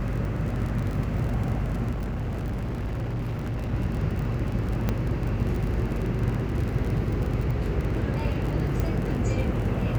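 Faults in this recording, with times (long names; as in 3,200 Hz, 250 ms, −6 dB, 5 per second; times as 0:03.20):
mains buzz 50 Hz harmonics 12 −31 dBFS
surface crackle 38 per second −30 dBFS
0:01.91–0:03.74: clipping −26 dBFS
0:04.89: click −12 dBFS
0:08.80: click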